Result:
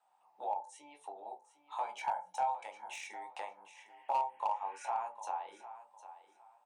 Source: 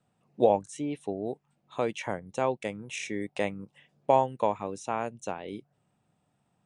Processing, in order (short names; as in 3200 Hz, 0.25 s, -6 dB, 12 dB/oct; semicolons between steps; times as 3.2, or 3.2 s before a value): 1.83–2.64 comb 1.3 ms, depth 96%; 3.92–4.88 spectral repair 1400–3300 Hz both; compressor 3:1, threshold -41 dBFS, peak gain reduction 18 dB; ladder high-pass 810 Hz, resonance 80%; feedback echo 0.755 s, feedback 23%, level -14 dB; on a send at -2 dB: reverb RT60 0.35 s, pre-delay 11 ms; on the sum: slew limiter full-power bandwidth 18 Hz; gain +7.5 dB